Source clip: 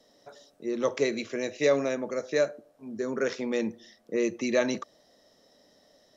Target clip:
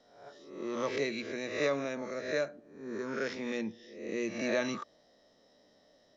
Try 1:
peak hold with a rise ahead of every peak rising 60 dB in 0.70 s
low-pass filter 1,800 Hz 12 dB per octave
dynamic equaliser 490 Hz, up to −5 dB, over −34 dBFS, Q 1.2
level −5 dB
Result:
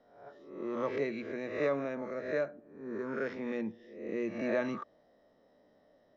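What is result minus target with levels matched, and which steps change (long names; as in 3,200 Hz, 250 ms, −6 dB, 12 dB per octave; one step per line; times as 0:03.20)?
4,000 Hz band −11.5 dB
change: low-pass filter 5,000 Hz 12 dB per octave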